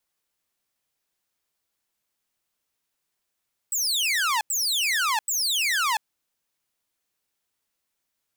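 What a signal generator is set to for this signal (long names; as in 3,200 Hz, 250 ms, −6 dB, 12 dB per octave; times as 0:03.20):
repeated falling chirps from 8,100 Hz, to 830 Hz, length 0.69 s saw, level −18.5 dB, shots 3, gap 0.09 s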